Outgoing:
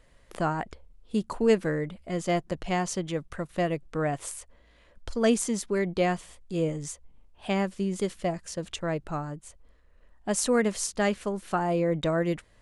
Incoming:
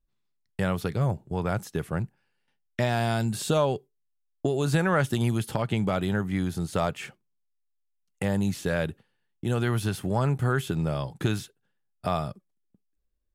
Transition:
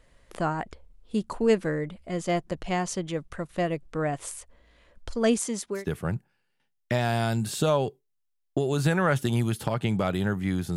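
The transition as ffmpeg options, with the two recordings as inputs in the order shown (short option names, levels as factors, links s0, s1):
-filter_complex "[0:a]asettb=1/sr,asplit=3[s0][s1][s2];[s0]atrim=end=5.384[s3];[s1]atrim=start=5.38:end=5.86,asetpts=PTS-STARTPTS,afade=t=in:d=0.004:c=qsin,afade=t=out:st=0.476:d=0.004:c=qsin,highpass=f=220:p=1[s4];[s2]atrim=start=5.856[s5];[s3][s4]acrossfade=d=0.004:c1=hsin:c2=qsin[s6];[s6][s5]acrossfade=d=0.004:c1=qsin:c2=hsin,apad=whole_dur=10.76,atrim=end=10.76,atrim=end=5.86,asetpts=PTS-STARTPTS[s7];[1:a]atrim=start=1.58:end=6.64,asetpts=PTS-STARTPTS[s8];[s7][s8]acrossfade=d=0.16:c1=tri:c2=tri"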